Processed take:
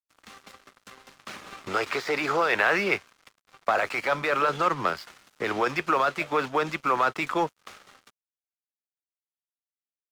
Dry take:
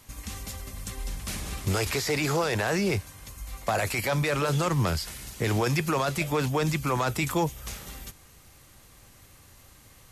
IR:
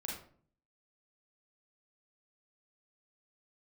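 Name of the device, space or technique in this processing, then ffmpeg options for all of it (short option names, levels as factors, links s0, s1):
pocket radio on a weak battery: -filter_complex "[0:a]asplit=3[s0][s1][s2];[s0]afade=t=out:st=2.48:d=0.02[s3];[s1]adynamicequalizer=threshold=0.00562:dfrequency=2300:dqfactor=1.1:tfrequency=2300:tqfactor=1.1:attack=5:release=100:ratio=0.375:range=3.5:mode=boostabove:tftype=bell,afade=t=in:st=2.48:d=0.02,afade=t=out:st=3.38:d=0.02[s4];[s2]afade=t=in:st=3.38:d=0.02[s5];[s3][s4][s5]amix=inputs=3:normalize=0,highpass=330,lowpass=3400,aeval=exprs='sgn(val(0))*max(abs(val(0))-0.00473,0)':c=same,equalizer=f=1300:t=o:w=0.51:g=7,volume=1.33"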